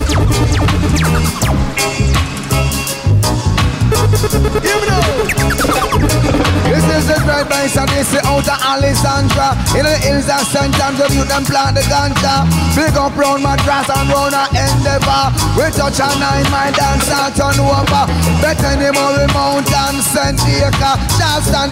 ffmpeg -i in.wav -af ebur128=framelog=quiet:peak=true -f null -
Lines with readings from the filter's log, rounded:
Integrated loudness:
  I:         -12.6 LUFS
  Threshold: -22.6 LUFS
Loudness range:
  LRA:         1.2 LU
  Threshold: -32.6 LUFS
  LRA low:   -13.4 LUFS
  LRA high:  -12.2 LUFS
True peak:
  Peak:       -3.5 dBFS